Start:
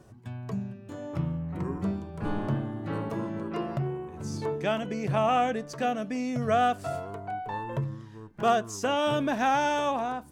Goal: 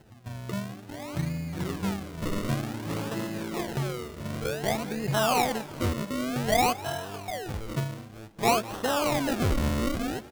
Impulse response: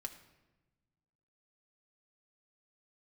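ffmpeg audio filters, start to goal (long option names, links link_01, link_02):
-filter_complex "[0:a]acrusher=samples=37:mix=1:aa=0.000001:lfo=1:lforange=37:lforate=0.54,asplit=4[link_01][link_02][link_03][link_04];[link_02]adelay=199,afreqshift=100,volume=-19dB[link_05];[link_03]adelay=398,afreqshift=200,volume=-26.3dB[link_06];[link_04]adelay=597,afreqshift=300,volume=-33.7dB[link_07];[link_01][link_05][link_06][link_07]amix=inputs=4:normalize=0"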